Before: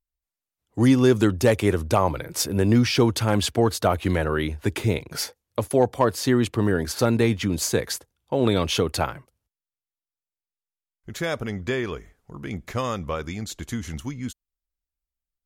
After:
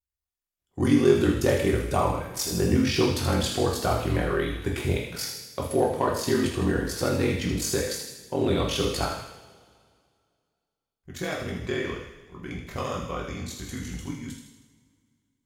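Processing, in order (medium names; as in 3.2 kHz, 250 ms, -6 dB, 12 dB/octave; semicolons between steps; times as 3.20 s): ring modulator 22 Hz; feedback echo behind a high-pass 79 ms, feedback 55%, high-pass 2.2 kHz, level -6.5 dB; two-slope reverb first 0.62 s, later 2.3 s, from -19 dB, DRR -1.5 dB; trim -4 dB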